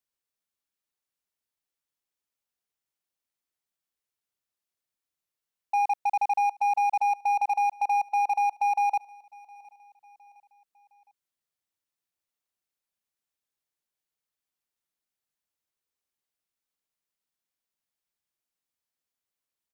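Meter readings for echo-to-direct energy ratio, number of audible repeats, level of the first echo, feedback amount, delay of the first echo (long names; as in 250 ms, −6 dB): −23.0 dB, 2, −24.0 dB, 46%, 712 ms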